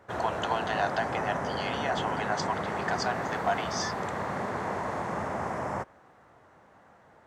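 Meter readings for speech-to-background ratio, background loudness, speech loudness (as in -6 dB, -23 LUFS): -0.5 dB, -32.5 LUFS, -33.0 LUFS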